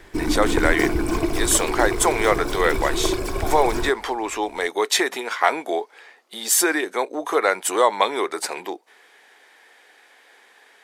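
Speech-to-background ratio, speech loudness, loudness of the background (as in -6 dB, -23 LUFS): 3.5 dB, -22.0 LUFS, -25.5 LUFS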